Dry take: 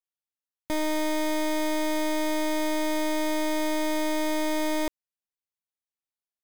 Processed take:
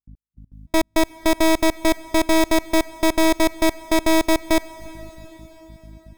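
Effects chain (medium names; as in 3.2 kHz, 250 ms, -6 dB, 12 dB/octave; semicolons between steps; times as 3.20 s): level rider gain up to 11.5 dB; hum 50 Hz, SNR 25 dB; trance gate ".x...x.xx.x." 195 bpm -60 dB; speed mistake 24 fps film run at 25 fps; reverberation RT60 4.3 s, pre-delay 259 ms, DRR 19 dB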